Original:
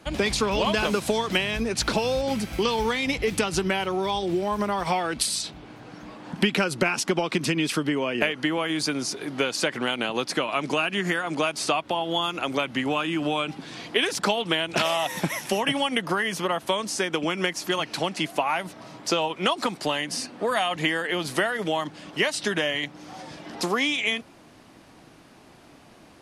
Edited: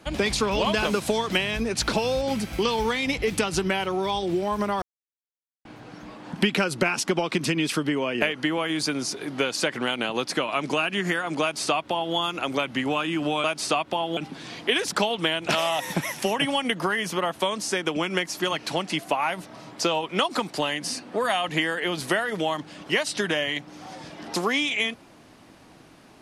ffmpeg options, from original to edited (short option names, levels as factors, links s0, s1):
-filter_complex "[0:a]asplit=5[s0][s1][s2][s3][s4];[s0]atrim=end=4.82,asetpts=PTS-STARTPTS,afade=t=out:st=4.816:d=0.004:c=hsin[s5];[s1]atrim=start=4.82:end=5.65,asetpts=PTS-STARTPTS,volume=0[s6];[s2]atrim=start=5.65:end=13.442,asetpts=PTS-STARTPTS,afade=t=in:d=0.004:c=hsin[s7];[s3]atrim=start=11.418:end=12.152[s8];[s4]atrim=start=13.438[s9];[s5][s6][s7]concat=n=3:v=0:a=1[s10];[s10][s8]acrossfade=d=0.004:c1=hsin:c2=hsin[s11];[s11][s9]acrossfade=d=0.004:c1=hsin:c2=hsin"